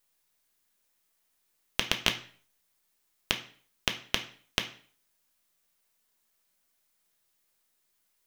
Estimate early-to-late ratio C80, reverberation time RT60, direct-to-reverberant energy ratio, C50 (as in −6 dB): 16.5 dB, 0.45 s, 4.0 dB, 12.0 dB